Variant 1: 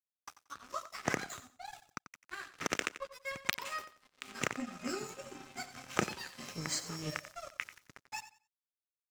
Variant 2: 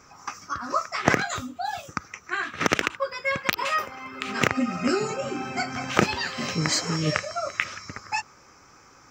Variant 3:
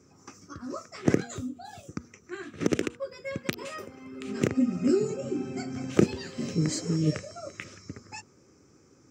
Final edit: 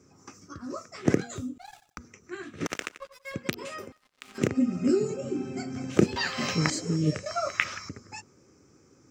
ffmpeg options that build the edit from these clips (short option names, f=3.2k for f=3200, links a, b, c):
-filter_complex "[0:a]asplit=3[a][b][c];[1:a]asplit=2[d][e];[2:a]asplit=6[f][g][h][i][j][k];[f]atrim=end=1.582[l];[a]atrim=start=1.578:end=1.982[m];[g]atrim=start=1.978:end=2.662[n];[b]atrim=start=2.658:end=3.342[o];[h]atrim=start=3.338:end=3.922[p];[c]atrim=start=3.918:end=4.382[q];[i]atrim=start=4.378:end=6.162[r];[d]atrim=start=6.158:end=6.702[s];[j]atrim=start=6.698:end=7.262[t];[e]atrim=start=7.258:end=7.892[u];[k]atrim=start=7.888[v];[l][m]acrossfade=d=0.004:c1=hsin:c2=hsin[w];[w][n]acrossfade=d=0.004:c1=hsin:c2=hsin[x];[x][o]acrossfade=d=0.004:c1=hsin:c2=hsin[y];[y][p]acrossfade=d=0.004:c1=hsin:c2=hsin[z];[z][q]acrossfade=d=0.004:c1=hsin:c2=hsin[aa];[aa][r]acrossfade=d=0.004:c1=hsin:c2=hsin[ab];[ab][s]acrossfade=d=0.004:c1=hsin:c2=hsin[ac];[ac][t]acrossfade=d=0.004:c1=hsin:c2=hsin[ad];[ad][u]acrossfade=d=0.004:c1=hsin:c2=hsin[ae];[ae][v]acrossfade=d=0.004:c1=hsin:c2=hsin"